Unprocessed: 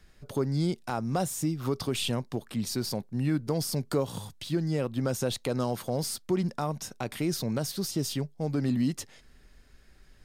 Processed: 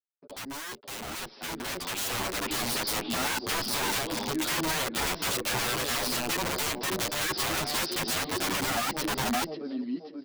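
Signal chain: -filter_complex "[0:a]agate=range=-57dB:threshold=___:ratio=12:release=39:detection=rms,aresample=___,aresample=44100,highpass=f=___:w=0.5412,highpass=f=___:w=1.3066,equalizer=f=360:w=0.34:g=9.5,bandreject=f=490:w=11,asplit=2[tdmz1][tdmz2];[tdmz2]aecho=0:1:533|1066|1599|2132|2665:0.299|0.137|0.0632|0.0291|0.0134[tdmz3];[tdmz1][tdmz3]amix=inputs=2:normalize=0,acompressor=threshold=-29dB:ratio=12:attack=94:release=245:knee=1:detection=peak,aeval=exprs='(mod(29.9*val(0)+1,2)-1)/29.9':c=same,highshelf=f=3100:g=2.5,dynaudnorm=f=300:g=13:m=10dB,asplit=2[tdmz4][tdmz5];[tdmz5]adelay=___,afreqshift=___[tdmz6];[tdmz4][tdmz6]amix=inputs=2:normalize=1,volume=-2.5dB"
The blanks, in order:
-47dB, 11025, 250, 250, 8.9, 0.62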